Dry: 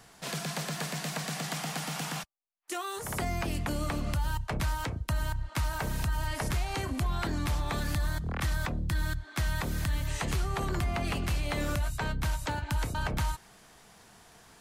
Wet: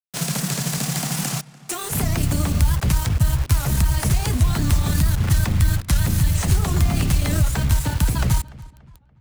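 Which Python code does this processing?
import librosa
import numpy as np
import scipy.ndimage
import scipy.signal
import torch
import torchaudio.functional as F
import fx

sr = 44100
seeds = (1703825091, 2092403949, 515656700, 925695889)

p1 = scipy.signal.sosfilt(scipy.signal.butter(2, 55.0, 'highpass', fs=sr, output='sos'), x)
p2 = fx.bass_treble(p1, sr, bass_db=12, treble_db=13)
p3 = fx.sample_hold(p2, sr, seeds[0], rate_hz=7400.0, jitter_pct=0)
p4 = p2 + (p3 * 10.0 ** (-11.0 / 20.0))
p5 = fx.stretch_grains(p4, sr, factor=0.63, grain_ms=56.0)
p6 = fx.quant_dither(p5, sr, seeds[1], bits=6, dither='none')
p7 = p6 + fx.echo_filtered(p6, sr, ms=287, feedback_pct=39, hz=3300.0, wet_db=-20.0, dry=0)
p8 = fx.record_warp(p7, sr, rpm=78.0, depth_cents=160.0)
y = p8 * 10.0 ** (3.0 / 20.0)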